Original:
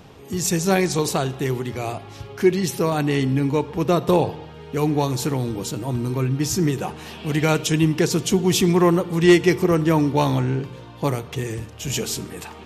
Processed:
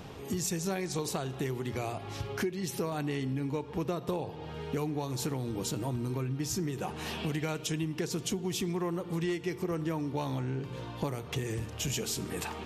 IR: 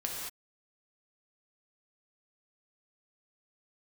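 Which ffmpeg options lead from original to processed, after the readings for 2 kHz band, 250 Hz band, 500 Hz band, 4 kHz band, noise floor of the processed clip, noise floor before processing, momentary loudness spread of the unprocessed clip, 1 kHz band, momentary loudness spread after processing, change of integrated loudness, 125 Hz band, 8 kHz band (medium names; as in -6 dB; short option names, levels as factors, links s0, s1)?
-13.0 dB, -13.5 dB, -14.0 dB, -10.5 dB, -44 dBFS, -41 dBFS, 12 LU, -13.0 dB, 4 LU, -13.0 dB, -12.0 dB, -10.0 dB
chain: -af "acompressor=threshold=0.0316:ratio=10"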